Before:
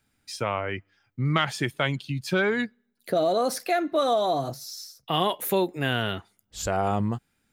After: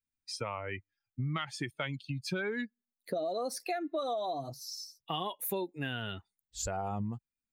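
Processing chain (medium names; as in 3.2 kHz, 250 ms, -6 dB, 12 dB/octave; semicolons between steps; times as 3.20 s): expander on every frequency bin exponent 1.5; compression 4:1, threshold -33 dBFS, peak gain reduction 11 dB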